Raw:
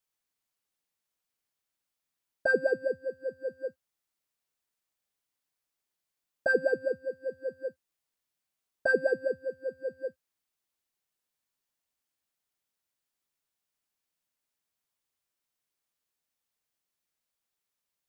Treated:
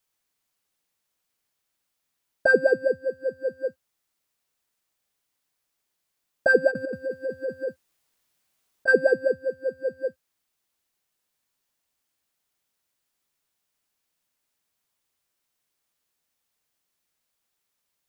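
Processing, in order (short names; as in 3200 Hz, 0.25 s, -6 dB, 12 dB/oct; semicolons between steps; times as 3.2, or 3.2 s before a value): 6.69–8.88 negative-ratio compressor -35 dBFS, ratio -1; gain +7 dB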